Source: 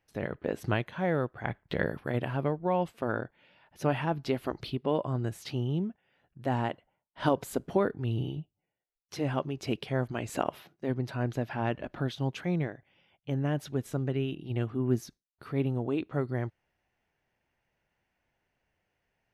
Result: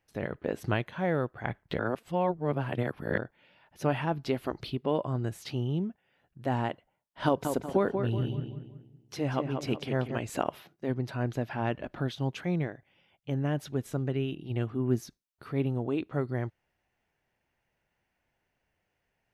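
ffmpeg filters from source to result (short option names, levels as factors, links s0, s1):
-filter_complex "[0:a]asettb=1/sr,asplit=3[s0][s1][s2];[s0]atrim=end=7.264[s3];[s1]atrim=start=7.26:end=10.18,asetpts=PTS-STARTPTS,afade=t=in:d=0.004:c=qsin,afade=t=out:st=2.916:d=0.004:c=qsin,asplit=2[s4][s5];[s5]adelay=187,lowpass=f=2700:p=1,volume=0.501,asplit=2[s6][s7];[s7]adelay=187,lowpass=f=2700:p=1,volume=0.41,asplit=2[s8][s9];[s9]adelay=187,lowpass=f=2700:p=1,volume=0.41,asplit=2[s10][s11];[s11]adelay=187,lowpass=f=2700:p=1,volume=0.41,asplit=2[s12][s13];[s13]adelay=187,lowpass=f=2700:p=1,volume=0.41[s14];[s4][s6][s8][s10][s12][s14]amix=inputs=6:normalize=0,atrim=end_sample=128772[s15];[s2]atrim=start=10.176[s16];[s3][s15]acrossfade=d=0.004:c1=hsin:c2=qsin[s17];[s17][s16]acrossfade=d=0.004:c1=qsin:c2=hsin,asplit=3[s18][s19][s20];[s18]atrim=end=1.792[s21];[s19]atrim=start=1.788:end=3.182,asetpts=PTS-STARTPTS,areverse[s22];[s20]atrim=start=3.178[s23];[s21][s22]acrossfade=d=0.004:c1=hsin:c2=hsin[s24];[s24][s23]acrossfade=d=0.004:c1=hsin:c2=hsin"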